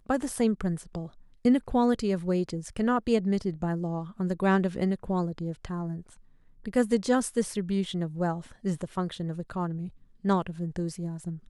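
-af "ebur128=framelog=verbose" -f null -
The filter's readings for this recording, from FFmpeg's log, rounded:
Integrated loudness:
  I:         -29.0 LUFS
  Threshold: -39.3 LUFS
Loudness range:
  LRA:         4.2 LU
  Threshold: -49.2 LUFS
  LRA low:   -31.8 LUFS
  LRA high:  -27.6 LUFS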